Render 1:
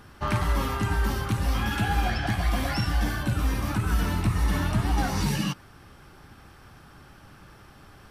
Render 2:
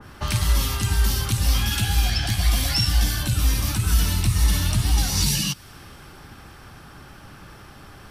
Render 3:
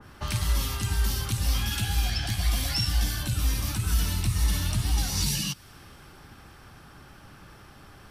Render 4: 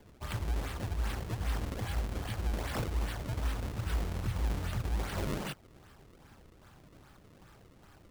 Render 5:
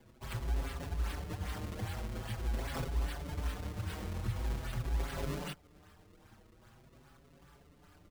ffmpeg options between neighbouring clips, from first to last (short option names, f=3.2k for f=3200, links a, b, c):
-filter_complex "[0:a]acrossover=split=140|3000[a][b][c];[b]acompressor=threshold=-39dB:ratio=6[d];[a][d][c]amix=inputs=3:normalize=0,adynamicequalizer=threshold=0.00178:dfrequency=2300:dqfactor=0.7:tfrequency=2300:tqfactor=0.7:attack=5:release=100:ratio=0.375:range=4:mode=boostabove:tftype=highshelf,volume=6dB"
-af "asoftclip=type=hard:threshold=-10dB,volume=-5.5dB"
-af "acrusher=samples=32:mix=1:aa=0.000001:lfo=1:lforange=51.2:lforate=2.5,volume=-8dB"
-filter_complex "[0:a]asplit=2[a][b];[b]adelay=5.8,afreqshift=0.45[c];[a][c]amix=inputs=2:normalize=1"